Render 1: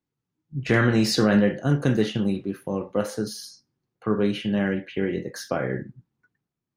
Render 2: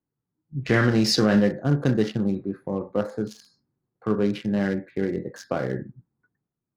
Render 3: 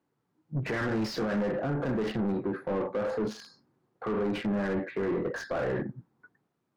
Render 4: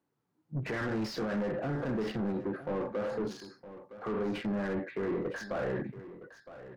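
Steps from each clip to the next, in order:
Wiener smoothing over 15 samples; dynamic EQ 5100 Hz, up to +5 dB, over -52 dBFS, Q 2.3
compressor 2.5:1, threshold -23 dBFS, peak gain reduction 6 dB; limiter -22 dBFS, peak gain reduction 10.5 dB; overdrive pedal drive 23 dB, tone 1200 Hz, clips at -22 dBFS
echo 0.963 s -14.5 dB; gain -3.5 dB

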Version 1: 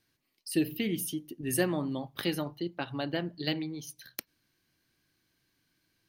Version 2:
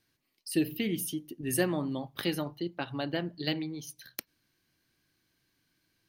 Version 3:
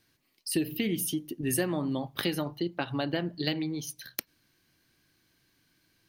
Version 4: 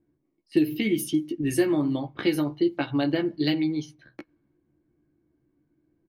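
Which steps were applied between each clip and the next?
nothing audible
compressor 3:1, threshold -32 dBFS, peak gain reduction 8 dB; gain +5.5 dB
doubler 14 ms -4 dB; small resonant body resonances 320/2200 Hz, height 12 dB, ringing for 70 ms; low-pass opened by the level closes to 570 Hz, open at -20.5 dBFS

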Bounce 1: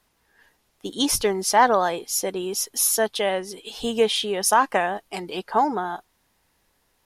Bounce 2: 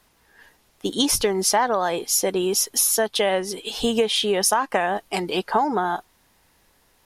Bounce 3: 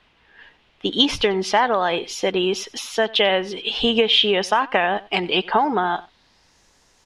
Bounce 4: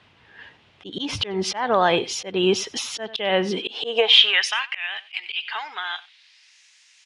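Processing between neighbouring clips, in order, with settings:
compressor 10:1, threshold -23 dBFS, peak gain reduction 12 dB; gain +6.5 dB
low-pass sweep 3000 Hz -> 6500 Hz, 5.89–6.6; echo 93 ms -21.5 dB; gain +1.5 dB
downsampling 22050 Hz; high-pass sweep 98 Hz -> 2400 Hz, 3.31–4.51; auto swell 0.264 s; gain +2.5 dB

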